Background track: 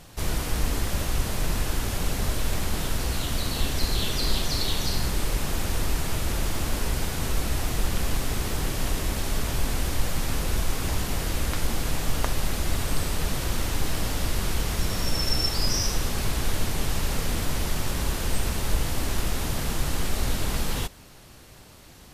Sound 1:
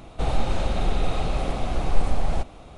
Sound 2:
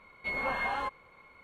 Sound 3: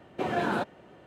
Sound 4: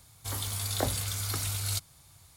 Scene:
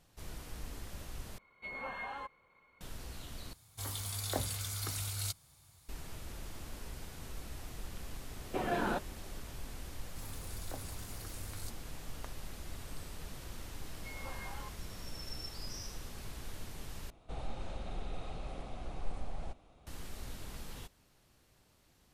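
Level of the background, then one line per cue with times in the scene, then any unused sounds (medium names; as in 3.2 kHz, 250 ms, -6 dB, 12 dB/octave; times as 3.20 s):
background track -19 dB
1.38 s: replace with 2 -10 dB
3.53 s: replace with 4 -6 dB
8.35 s: add 3 -5.5 dB
9.91 s: add 4 -16 dB + peaking EQ 3 kHz -13.5 dB 0.48 oct
13.80 s: add 2 -16 dB
17.10 s: replace with 1 -17.5 dB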